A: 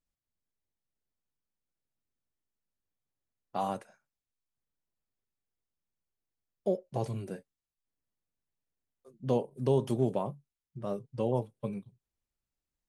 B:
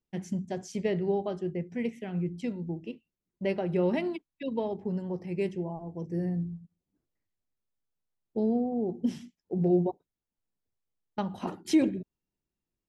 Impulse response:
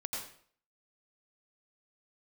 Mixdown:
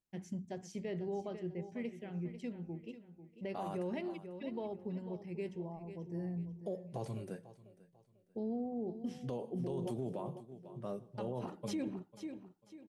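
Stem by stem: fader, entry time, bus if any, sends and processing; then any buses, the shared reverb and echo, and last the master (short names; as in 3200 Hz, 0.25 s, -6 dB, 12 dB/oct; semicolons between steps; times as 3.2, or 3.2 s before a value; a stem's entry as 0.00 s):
-5.0 dB, 0.00 s, send -22 dB, echo send -19.5 dB, HPF 89 Hz
-9.0 dB, 0.00 s, no send, echo send -12.5 dB, dry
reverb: on, RT60 0.55 s, pre-delay 80 ms
echo: feedback echo 0.494 s, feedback 31%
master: limiter -30.5 dBFS, peak gain reduction 13 dB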